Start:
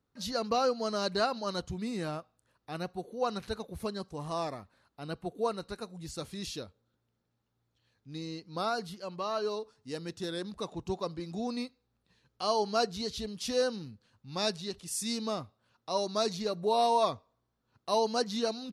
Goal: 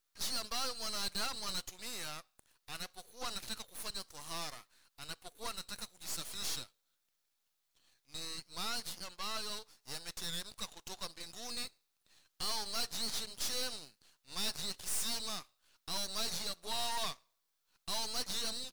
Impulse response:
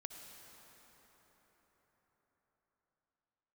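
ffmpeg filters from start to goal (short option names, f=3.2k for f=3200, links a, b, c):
-filter_complex "[0:a]aderivative,asplit=2[a][b];[b]highpass=f=720:p=1,volume=22dB,asoftclip=type=tanh:threshold=-22.5dB[c];[a][c]amix=inputs=2:normalize=0,lowpass=f=7.5k:p=1,volume=-6dB,aeval=exprs='max(val(0),0)':c=same"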